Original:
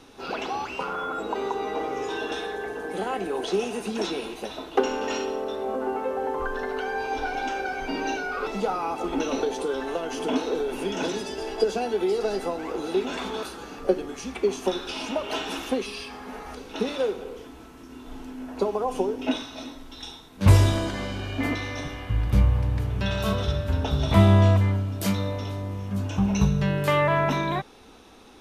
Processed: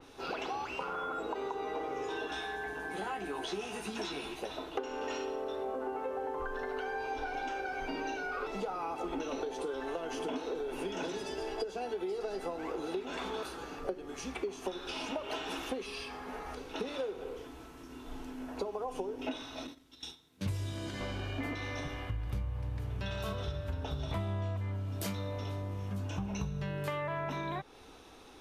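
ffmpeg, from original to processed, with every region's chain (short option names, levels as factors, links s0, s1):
-filter_complex "[0:a]asettb=1/sr,asplit=3[s0][s1][s2];[s0]atrim=end=2.284[s3];[s1]atrim=start=2.28:end=4.39,asetpts=PTS-STARTPTS,afade=t=in:d=0.004:c=qsin,afade=t=out:st=2.106:d=0.004:c=qsin,equalizer=f=500:t=o:w=0.92:g=-9.5,asplit=2[s4][s5];[s5]adelay=14,volume=0.631[s6];[s4][s6]amix=inputs=2:normalize=0,atrim=end_sample=93051[s7];[s2]atrim=start=4.386[s8];[s3][s7]acrossfade=d=0.004:c1=hsin:c2=qsin[s9];[s9][s8]acrossfade=d=0.004:c1=qsin:c2=hsin,asettb=1/sr,asplit=3[s10][s11][s12];[s10]atrim=end=19.674[s13];[s11]atrim=start=19.67:end=21.01,asetpts=PTS-STARTPTS,afade=t=in:d=0.004:c=qsin,afade=t=out:st=1.336:d=0.004:c=qsin,highpass=84,agate=range=0.316:threshold=0.00794:ratio=16:release=100:detection=peak,equalizer=f=850:w=0.59:g=-8.5[s14];[s12]atrim=start=21.006[s15];[s13][s14]acrossfade=d=0.004:c1=hsin:c2=qsin[s16];[s16][s15]acrossfade=d=0.004:c1=qsin:c2=hsin,equalizer=f=220:t=o:w=0.26:g=-9.5,acompressor=threshold=0.0316:ratio=6,adynamicequalizer=threshold=0.00316:dfrequency=3200:dqfactor=0.7:tfrequency=3200:tqfactor=0.7:attack=5:release=100:ratio=0.375:range=1.5:mode=cutabove:tftype=highshelf,volume=0.668"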